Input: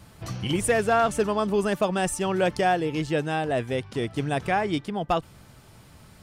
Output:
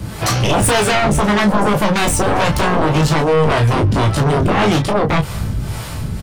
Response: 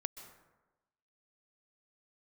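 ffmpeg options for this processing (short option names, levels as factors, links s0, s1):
-filter_complex "[0:a]acrossover=split=160[s0][s1];[s0]dynaudnorm=f=620:g=5:m=3.98[s2];[s1]alimiter=limit=0.0944:level=0:latency=1:release=149[s3];[s2][s3]amix=inputs=2:normalize=0,asoftclip=type=tanh:threshold=0.0841,acrossover=split=430[s4][s5];[s4]aeval=exprs='val(0)*(1-0.7/2+0.7/2*cos(2*PI*1.8*n/s))':c=same[s6];[s5]aeval=exprs='val(0)*(1-0.7/2-0.7/2*cos(2*PI*1.8*n/s))':c=same[s7];[s6][s7]amix=inputs=2:normalize=0,aeval=exprs='0.0891*sin(PI/2*3.98*val(0)/0.0891)':c=same,aecho=1:1:19|34:0.501|0.376,asplit=2[s8][s9];[1:a]atrim=start_sample=2205[s10];[s9][s10]afir=irnorm=-1:irlink=0,volume=0.237[s11];[s8][s11]amix=inputs=2:normalize=0,volume=2.24"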